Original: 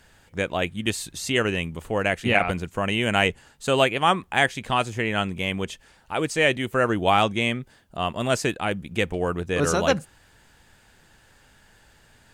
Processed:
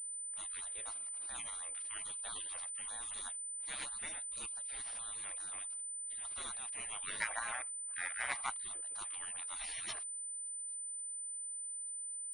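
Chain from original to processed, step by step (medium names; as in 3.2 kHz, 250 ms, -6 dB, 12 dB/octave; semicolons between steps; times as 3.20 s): 5.62–6.25 s: compression 3:1, threshold -30 dBFS, peak gain reduction 7.5 dB; spectral gate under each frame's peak -30 dB weak; 7.20–8.50 s: high-order bell 1.2 kHz +13.5 dB 2.3 oct; class-D stage that switches slowly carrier 9 kHz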